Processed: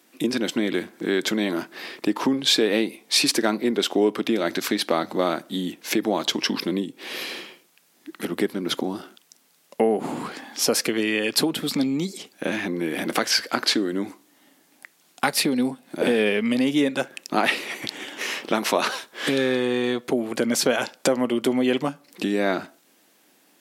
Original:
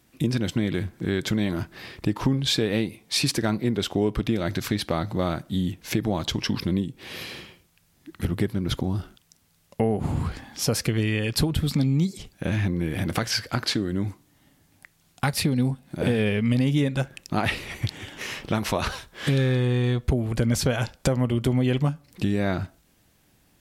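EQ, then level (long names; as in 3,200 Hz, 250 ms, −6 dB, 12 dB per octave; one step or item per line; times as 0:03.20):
high-pass filter 250 Hz 24 dB per octave
+5.0 dB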